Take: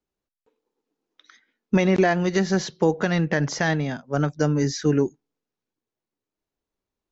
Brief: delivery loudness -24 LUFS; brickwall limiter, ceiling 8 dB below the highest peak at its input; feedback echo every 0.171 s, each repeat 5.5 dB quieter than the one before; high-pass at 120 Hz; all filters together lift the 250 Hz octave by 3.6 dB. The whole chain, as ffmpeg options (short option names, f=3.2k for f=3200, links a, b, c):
-af "highpass=120,equalizer=f=250:t=o:g=6,alimiter=limit=-14dB:level=0:latency=1,aecho=1:1:171|342|513|684|855|1026|1197:0.531|0.281|0.149|0.079|0.0419|0.0222|0.0118,volume=-1dB"